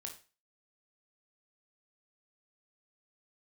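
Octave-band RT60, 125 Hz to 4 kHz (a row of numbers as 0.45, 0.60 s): 0.30, 0.35, 0.35, 0.35, 0.35, 0.35 s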